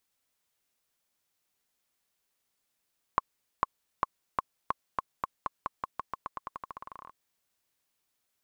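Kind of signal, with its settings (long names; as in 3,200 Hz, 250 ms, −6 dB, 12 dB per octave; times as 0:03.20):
bouncing ball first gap 0.45 s, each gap 0.89, 1,080 Hz, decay 23 ms −10 dBFS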